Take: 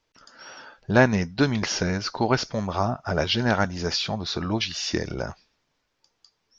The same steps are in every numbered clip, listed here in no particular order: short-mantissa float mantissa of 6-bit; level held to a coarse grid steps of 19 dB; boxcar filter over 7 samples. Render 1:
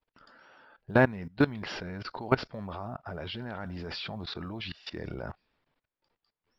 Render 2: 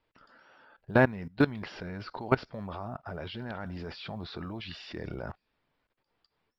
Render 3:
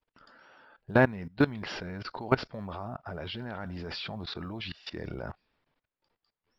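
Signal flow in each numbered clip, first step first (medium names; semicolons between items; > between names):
boxcar filter > level held to a coarse grid > short-mantissa float; level held to a coarse grid > boxcar filter > short-mantissa float; boxcar filter > short-mantissa float > level held to a coarse grid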